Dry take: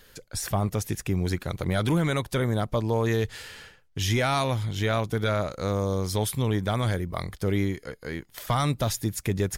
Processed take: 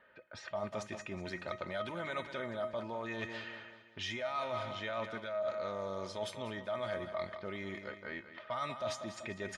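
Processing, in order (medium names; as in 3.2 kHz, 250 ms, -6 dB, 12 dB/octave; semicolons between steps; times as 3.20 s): level-controlled noise filter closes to 2.4 kHz, open at -21 dBFS; comb 3.3 ms, depth 59%; level-controlled noise filter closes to 2.2 kHz, open at -24 dBFS; band-pass 220–3500 Hz; feedback delay 193 ms, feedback 46%, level -13 dB; on a send at -24 dB: reverberation RT60 0.70 s, pre-delay 6 ms; on the sum: peak limiter -18 dBFS, peak gain reduction 7 dB; feedback comb 630 Hz, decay 0.27 s, harmonics all, mix 80%; reverse; compression 12:1, threshold -41 dBFS, peak gain reduction 13 dB; reverse; peaking EQ 300 Hz -14 dB 0.47 oct; trim +8.5 dB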